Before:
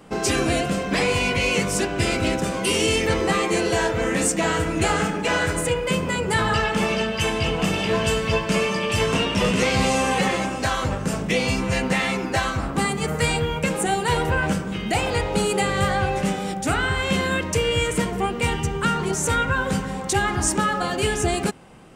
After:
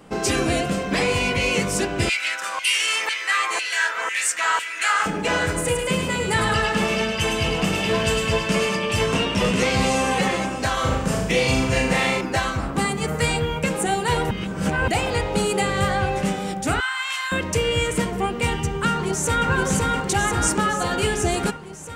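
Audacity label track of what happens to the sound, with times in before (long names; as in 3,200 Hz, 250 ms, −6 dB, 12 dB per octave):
2.090000	5.060000	auto-filter high-pass saw down 2 Hz 970–2,600 Hz
5.560000	8.760000	delay with a high-pass on its return 105 ms, feedback 50%, high-pass 1,900 Hz, level −3.5 dB
10.730000	12.210000	flutter between parallel walls apart 6.5 metres, dies away in 0.66 s
14.310000	14.880000	reverse
16.800000	17.320000	Butterworth high-pass 940 Hz
18.890000	19.480000	delay throw 520 ms, feedback 70%, level −2 dB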